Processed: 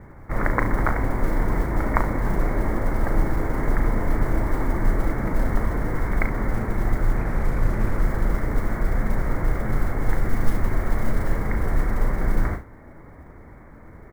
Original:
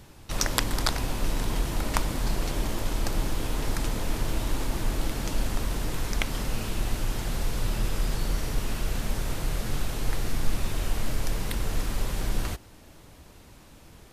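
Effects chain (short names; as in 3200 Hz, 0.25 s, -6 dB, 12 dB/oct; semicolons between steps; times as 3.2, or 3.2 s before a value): Chebyshev low-pass 2200 Hz, order 8; modulation noise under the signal 32 dB; on a send: early reflections 37 ms -8 dB, 70 ms -13.5 dB; 7.17–8.03 on the sum: Doppler distortion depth 0.33 ms; gain +6.5 dB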